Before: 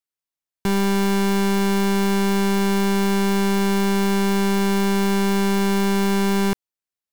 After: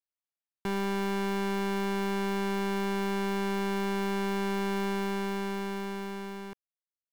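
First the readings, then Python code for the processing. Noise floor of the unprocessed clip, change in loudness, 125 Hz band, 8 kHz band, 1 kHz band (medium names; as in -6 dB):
under -85 dBFS, -11.5 dB, no reading, -16.0 dB, -9.0 dB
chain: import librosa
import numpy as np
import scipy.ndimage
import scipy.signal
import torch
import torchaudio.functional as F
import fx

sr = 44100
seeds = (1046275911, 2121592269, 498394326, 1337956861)

y = fx.fade_out_tail(x, sr, length_s=2.28)
y = fx.bass_treble(y, sr, bass_db=-6, treble_db=-8)
y = F.gain(torch.from_numpy(y), -8.0).numpy()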